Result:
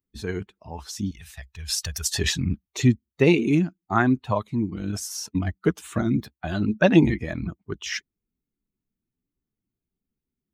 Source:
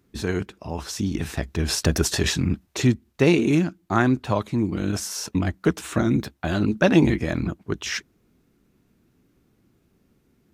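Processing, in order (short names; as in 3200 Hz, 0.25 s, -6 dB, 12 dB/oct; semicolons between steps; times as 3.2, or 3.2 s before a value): per-bin expansion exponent 1.5; 1.11–2.15 passive tone stack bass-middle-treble 10-0-10; gain +2 dB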